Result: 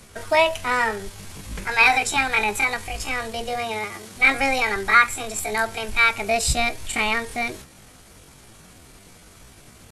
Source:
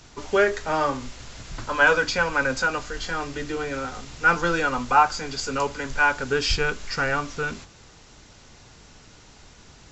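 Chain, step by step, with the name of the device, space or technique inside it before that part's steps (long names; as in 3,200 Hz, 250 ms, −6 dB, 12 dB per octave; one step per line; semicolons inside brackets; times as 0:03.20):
chipmunk voice (pitch shifter +8 semitones)
0:03.57–0:04.15: high-pass filter 51 Hz → 170 Hz
level +2 dB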